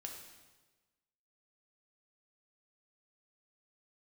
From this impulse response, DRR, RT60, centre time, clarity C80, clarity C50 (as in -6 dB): 1.0 dB, 1.3 s, 42 ms, 6.0 dB, 4.5 dB